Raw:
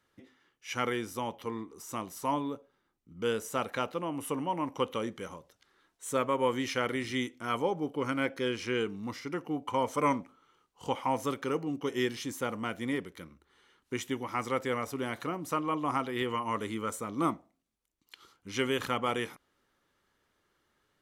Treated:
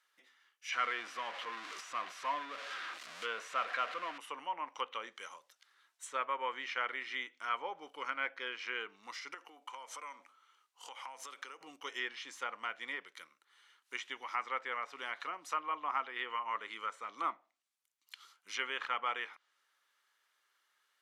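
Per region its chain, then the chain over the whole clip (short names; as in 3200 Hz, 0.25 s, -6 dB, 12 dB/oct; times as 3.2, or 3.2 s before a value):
0.72–4.18 zero-crossing step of -32 dBFS + Butterworth band-stop 870 Hz, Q 7.5 + bell 410 Hz -4.5 dB 0.29 oct
9.34–11.61 HPF 210 Hz 24 dB/oct + compressor 10:1, threshold -37 dBFS
whole clip: HPF 1200 Hz 12 dB/oct; treble ducked by the level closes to 2400 Hz, closed at -36 dBFS; gain +1 dB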